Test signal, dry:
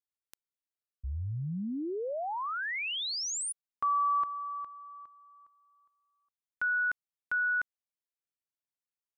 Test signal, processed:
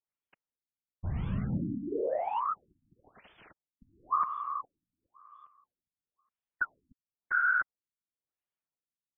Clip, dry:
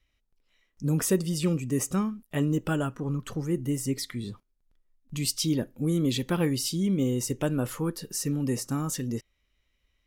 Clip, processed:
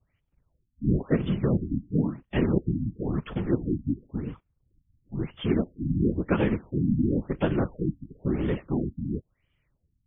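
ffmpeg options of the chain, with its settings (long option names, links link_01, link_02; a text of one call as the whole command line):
ffmpeg -i in.wav -af "acrusher=bits=3:mode=log:mix=0:aa=0.000001,afftfilt=real='hypot(re,im)*cos(2*PI*random(0))':imag='hypot(re,im)*sin(2*PI*random(1))':win_size=512:overlap=0.75,afftfilt=real='re*lt(b*sr/1024,290*pow(3600/290,0.5+0.5*sin(2*PI*0.97*pts/sr)))':imag='im*lt(b*sr/1024,290*pow(3600/290,0.5+0.5*sin(2*PI*0.97*pts/sr)))':win_size=1024:overlap=0.75,volume=8dB" out.wav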